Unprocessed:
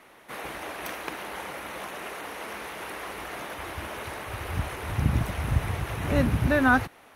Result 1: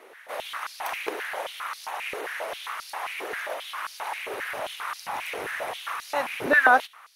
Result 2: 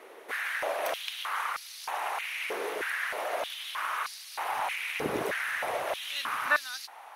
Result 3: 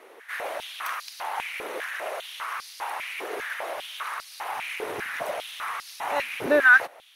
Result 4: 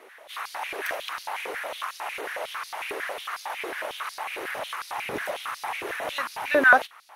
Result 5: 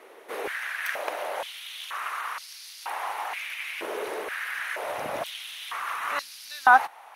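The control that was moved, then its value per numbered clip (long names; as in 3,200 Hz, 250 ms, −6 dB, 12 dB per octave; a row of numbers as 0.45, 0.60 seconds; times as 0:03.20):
high-pass on a step sequencer, speed: 7.5, 3.2, 5, 11, 2.1 Hertz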